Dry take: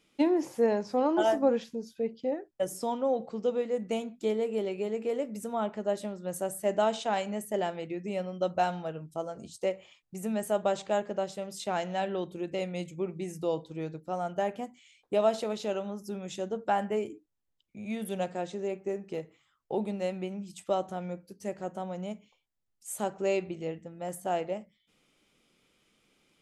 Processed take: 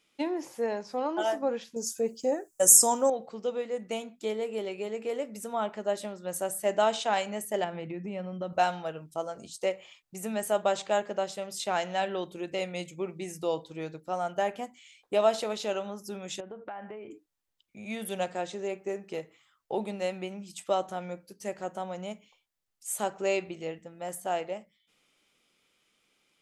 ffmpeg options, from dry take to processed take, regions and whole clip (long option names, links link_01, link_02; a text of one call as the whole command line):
ffmpeg -i in.wav -filter_complex "[0:a]asettb=1/sr,asplit=3[link_01][link_02][link_03];[link_01]atrim=end=1.764[link_04];[link_02]atrim=start=1.76:end=3.1,asetpts=PTS-STARTPTS,afade=type=in:duration=0.004:curve=qsin,afade=type=out:start_time=1.336:duration=0.004:curve=qsin,bandreject=frequency=2100:width=11,acontrast=83,highshelf=frequency=5100:width_type=q:width=3:gain=13.5[link_05];[link_03]atrim=start=3.096[link_06];[link_04][link_05]acrossfade=duration=0.004:curve1=hsin:curve2=qsin[link_07];[link_07][link_06]acrossfade=duration=0.004:curve1=qsin:curve2=hsin,asettb=1/sr,asplit=3[link_08][link_09][link_10];[link_08]atrim=end=7.644[link_11];[link_09]atrim=start=7.64:end=8.53,asetpts=PTS-STARTPTS,afade=type=in:duration=0.004:curve=qsin,afade=type=out:start_time=0.886:duration=0.004:curve=qsin,highpass=140,bass=frequency=250:gain=14,treble=frequency=4000:gain=-14,acompressor=threshold=-32dB:ratio=3:attack=3.2:release=140:knee=1:detection=peak[link_12];[link_10]atrim=start=8.526[link_13];[link_11][link_12]acrossfade=duration=0.004:curve1=hsin:curve2=qsin[link_14];[link_14][link_13]acrossfade=duration=0.004:curve1=qsin:curve2=hsin,asettb=1/sr,asplit=3[link_15][link_16][link_17];[link_15]atrim=end=16.404[link_18];[link_16]atrim=start=16.4:end=17.11,asetpts=PTS-STARTPTS,afade=type=in:duration=0.004:curve=qsin,afade=type=out:start_time=0.706:duration=0.004:curve=qsin,lowpass=frequency=2600:width=0.5412,lowpass=frequency=2600:width=1.3066,acompressor=threshold=-37dB:ratio=20:attack=3.2:release=140:knee=1:detection=peak[link_19];[link_17]atrim=start=17.106[link_20];[link_18][link_19]acrossfade=duration=0.004:curve1=hsin:curve2=qsin[link_21];[link_21][link_20]acrossfade=duration=0.004:curve1=qsin:curve2=hsin,lowshelf=frequency=460:gain=-10,dynaudnorm=framelen=380:gausssize=13:maxgain=5dB" out.wav